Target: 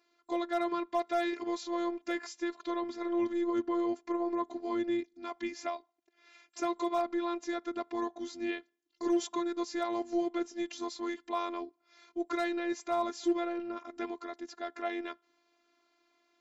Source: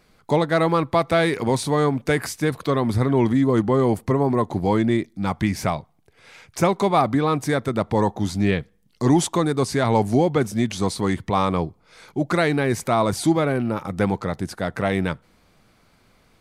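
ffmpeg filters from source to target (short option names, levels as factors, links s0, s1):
-af "afftfilt=real='re*between(b*sr/4096,200,7600)':imag='im*between(b*sr/4096,200,7600)':win_size=4096:overlap=0.75,afftfilt=real='hypot(re,im)*cos(PI*b)':imag='0':win_size=512:overlap=0.75,volume=3.98,asoftclip=hard,volume=0.251,volume=0.355"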